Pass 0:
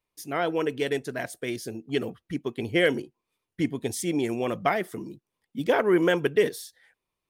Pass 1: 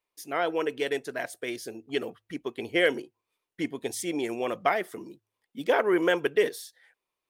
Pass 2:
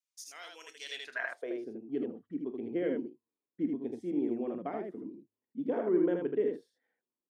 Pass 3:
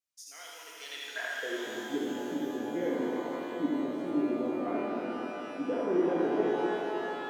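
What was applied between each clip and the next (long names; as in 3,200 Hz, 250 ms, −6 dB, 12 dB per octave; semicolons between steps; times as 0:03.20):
bass and treble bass −13 dB, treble −2 dB; hum removal 53.04 Hz, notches 2
band-pass filter sweep 6,400 Hz → 250 Hz, 0:00.78–0:01.70; on a send: ambience of single reflections 28 ms −13.5 dB, 44 ms −16 dB, 78 ms −3.5 dB; on the sum: level +1.5 dB
reverb with rising layers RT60 3.8 s, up +12 semitones, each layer −8 dB, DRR −3.5 dB; level −2.5 dB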